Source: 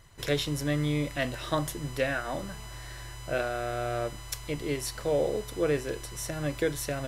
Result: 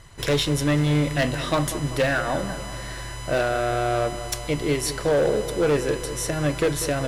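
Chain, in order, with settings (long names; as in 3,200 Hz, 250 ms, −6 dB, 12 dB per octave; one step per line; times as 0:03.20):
Chebyshev low-pass filter 11,000 Hz, order 3
gain into a clipping stage and back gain 24.5 dB
feedback echo with a low-pass in the loop 194 ms, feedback 61%, low-pass 2,000 Hz, level −12 dB
level +8.5 dB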